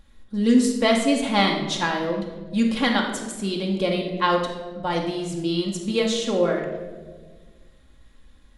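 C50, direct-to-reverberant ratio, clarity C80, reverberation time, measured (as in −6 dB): 5.0 dB, −0.5 dB, 7.0 dB, 1.4 s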